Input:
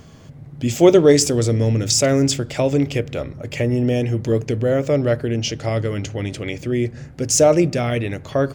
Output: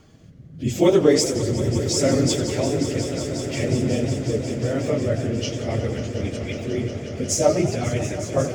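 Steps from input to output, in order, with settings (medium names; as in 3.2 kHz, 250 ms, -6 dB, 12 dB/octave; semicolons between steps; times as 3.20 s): phase randomisation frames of 50 ms; rotary cabinet horn 0.75 Hz, later 7.5 Hz, at 4.71 s; on a send: echo with a slow build-up 181 ms, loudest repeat 5, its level -14.5 dB; on the sum: modulated delay 93 ms, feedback 61%, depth 201 cents, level -12.5 dB; trim -3.5 dB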